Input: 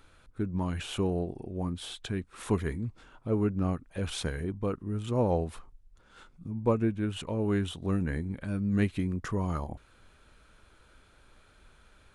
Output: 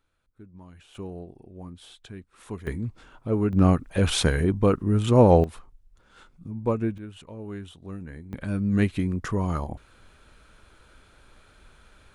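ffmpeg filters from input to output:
ffmpeg -i in.wav -af "asetnsamples=nb_out_samples=441:pad=0,asendcmd='0.95 volume volume -8dB;2.67 volume volume 3.5dB;3.53 volume volume 11dB;5.44 volume volume 1dB;6.98 volume volume -8.5dB;8.33 volume volume 4.5dB',volume=-16dB" out.wav

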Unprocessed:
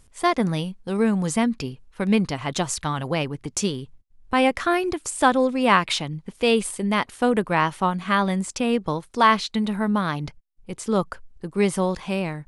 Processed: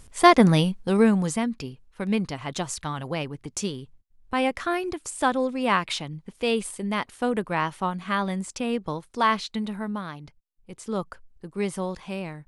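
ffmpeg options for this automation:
ffmpeg -i in.wav -af "volume=12.5dB,afade=type=out:start_time=0.7:duration=0.7:silence=0.281838,afade=type=out:start_time=9.53:duration=0.71:silence=0.375837,afade=type=in:start_time=10.24:duration=0.67:silence=0.473151" out.wav

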